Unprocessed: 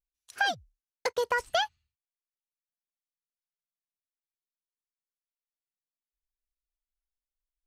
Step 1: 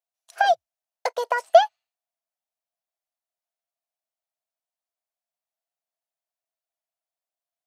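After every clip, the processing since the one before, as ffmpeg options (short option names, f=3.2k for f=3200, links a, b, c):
-af "highpass=f=670:t=q:w=7.8"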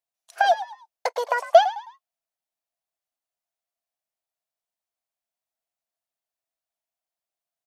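-filter_complex "[0:a]asplit=4[a][b][c][d];[b]adelay=106,afreqshift=78,volume=-14dB[e];[c]adelay=212,afreqshift=156,volume=-23.6dB[f];[d]adelay=318,afreqshift=234,volume=-33.3dB[g];[a][e][f][g]amix=inputs=4:normalize=0"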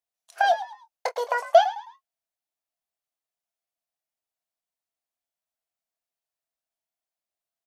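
-filter_complex "[0:a]asplit=2[a][b];[b]adelay=25,volume=-10.5dB[c];[a][c]amix=inputs=2:normalize=0,volume=-2.5dB"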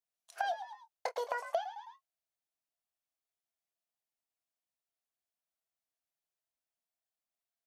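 -af "acompressor=threshold=-27dB:ratio=6,volume=-5dB"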